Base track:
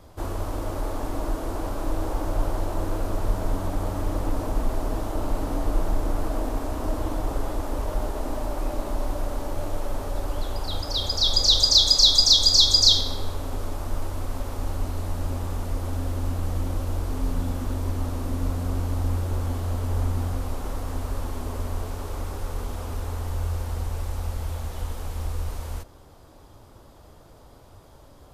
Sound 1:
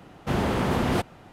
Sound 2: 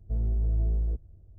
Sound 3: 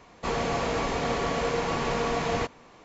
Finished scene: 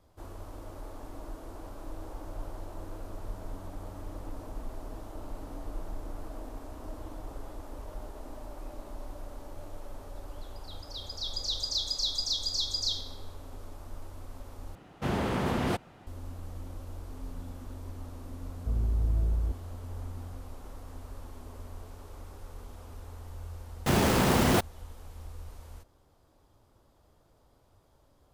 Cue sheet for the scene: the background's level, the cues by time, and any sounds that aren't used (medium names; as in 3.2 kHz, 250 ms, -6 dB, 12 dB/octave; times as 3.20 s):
base track -14.5 dB
14.75 s: replace with 1 -5 dB
18.56 s: add 2 -1.5 dB
23.59 s: add 1 + bit crusher 5-bit
not used: 3